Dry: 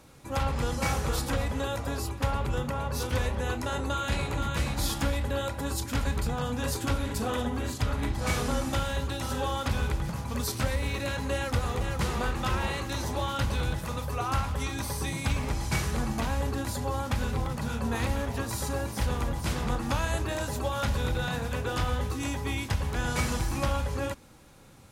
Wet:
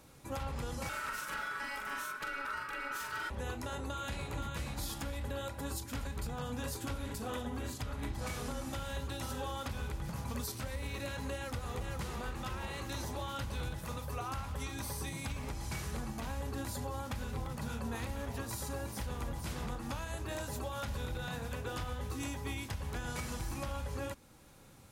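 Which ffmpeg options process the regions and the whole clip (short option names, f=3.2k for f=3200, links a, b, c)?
-filter_complex "[0:a]asettb=1/sr,asplit=3[a][b][c];[a]atrim=end=0.894[d];[b]atrim=start=0.89:end=3.3,asetpts=PTS-STARTPTS,afade=t=in:d=0.004:c=qsin,afade=t=out:st=2.406:d=0.004:c=qsin,aeval=exprs='val(0)*sin(2*PI*1400*n/s)':c=same,bandreject=f=750:w=11,asplit=2[e][f];[f]adelay=43,volume=-2.5dB[g];[e][g]amix=inputs=2:normalize=0,atrim=end_sample=106281[h];[c]atrim=start=3.296[i];[d][h]acrossfade=d=0.004:c1=hsin:c2=qsin[j];[j][i]acrossfade=d=0.004:c1=qsin:c2=hsin,highshelf=f=11k:g=6,alimiter=level_in=0.5dB:limit=-24dB:level=0:latency=1:release=374,volume=-0.5dB,volume=-4.5dB"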